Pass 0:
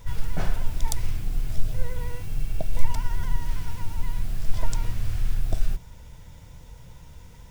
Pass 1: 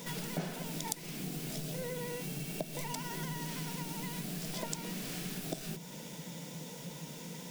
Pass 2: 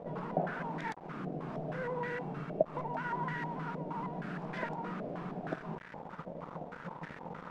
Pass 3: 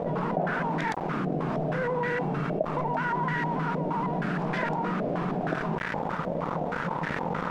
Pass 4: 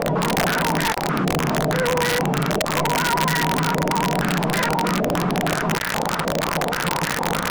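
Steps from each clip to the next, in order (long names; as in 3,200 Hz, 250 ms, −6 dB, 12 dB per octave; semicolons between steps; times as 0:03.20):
elliptic high-pass filter 160 Hz, stop band 40 dB; parametric band 1,200 Hz −9 dB 1.7 octaves; downward compressor 3 to 1, threshold −50 dBFS, peak gain reduction 17 dB; level +12 dB
low-shelf EQ 81 Hz −9.5 dB; bit reduction 7 bits; low-pass on a step sequencer 6.4 Hz 630–1,700 Hz; level +1 dB
envelope flattener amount 70%
wrap-around overflow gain 20.5 dB; level +8 dB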